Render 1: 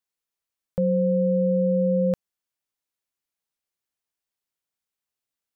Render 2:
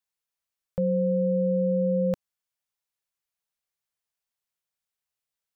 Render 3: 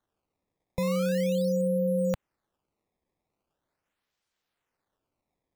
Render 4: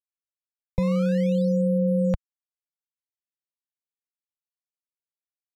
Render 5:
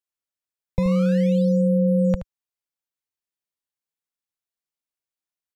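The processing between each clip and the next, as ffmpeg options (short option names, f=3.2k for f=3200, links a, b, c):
-af "equalizer=f=300:t=o:w=0.55:g=-12.5,volume=-1dB"
-filter_complex "[0:a]acrossover=split=140|650[a][b][c];[b]alimiter=level_in=7.5dB:limit=-24dB:level=0:latency=1,volume=-7.5dB[d];[c]acrusher=samples=17:mix=1:aa=0.000001:lfo=1:lforange=27.2:lforate=0.41[e];[a][d][e]amix=inputs=3:normalize=0,volume=4dB"
-af "aeval=exprs='val(0)*gte(abs(val(0)),0.00133)':c=same,aemphasis=mode=reproduction:type=bsi"
-af "aecho=1:1:75:0.251,volume=2dB"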